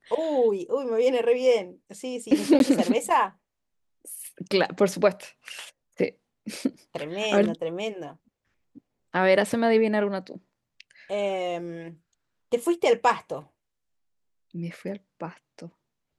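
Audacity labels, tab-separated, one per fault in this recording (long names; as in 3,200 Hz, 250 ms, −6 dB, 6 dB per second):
2.590000	2.600000	drop-out 12 ms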